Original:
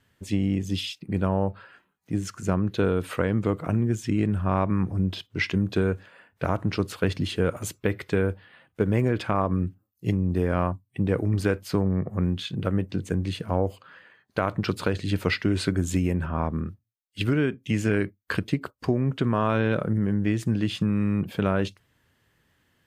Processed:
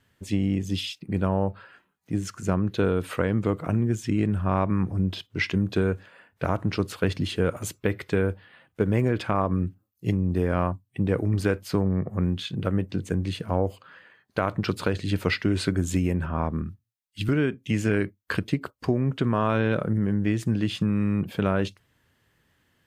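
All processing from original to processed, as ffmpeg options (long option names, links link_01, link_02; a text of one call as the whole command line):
ffmpeg -i in.wav -filter_complex "[0:a]asettb=1/sr,asplit=3[link_01][link_02][link_03];[link_01]atrim=end=16.624[link_04];[link_02]atrim=start=16.62:end=17.29,asetpts=PTS-STARTPTS,afade=type=in:duration=0.004:curve=qsin,afade=type=out:start_time=0.666:duration=0.004:curve=qsin,equalizer=frequency=520:width=1.6:gain=-11.5,acrossover=split=320|3000[link_05][link_06][link_07];[link_06]acompressor=threshold=-58dB:ratio=1.5:attack=3.2:release=140:knee=2.83:detection=peak[link_08];[link_05][link_08][link_07]amix=inputs=3:normalize=0[link_09];[link_03]atrim=start=17.286[link_10];[link_04][link_09]acrossfade=duration=0.004:curve1=hsin:curve2=qsin[link_11];[link_11][link_10]acrossfade=duration=0.004:curve1=qsin:curve2=hsin" out.wav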